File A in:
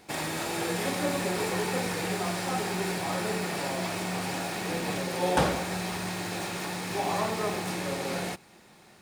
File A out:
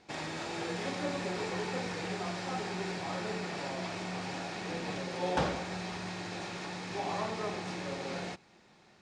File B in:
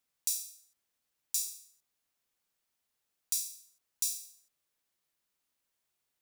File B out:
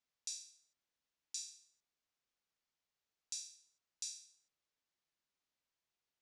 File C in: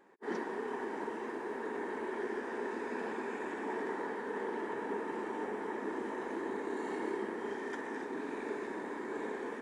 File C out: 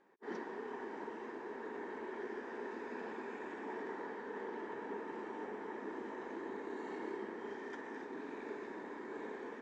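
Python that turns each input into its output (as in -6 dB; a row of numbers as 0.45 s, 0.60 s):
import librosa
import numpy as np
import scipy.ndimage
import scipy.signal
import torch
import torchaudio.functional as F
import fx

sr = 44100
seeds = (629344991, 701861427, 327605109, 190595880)

y = scipy.signal.sosfilt(scipy.signal.butter(4, 6700.0, 'lowpass', fs=sr, output='sos'), x)
y = y * librosa.db_to_amplitude(-6.0)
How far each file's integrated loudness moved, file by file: -6.5 LU, -12.0 LU, -6.0 LU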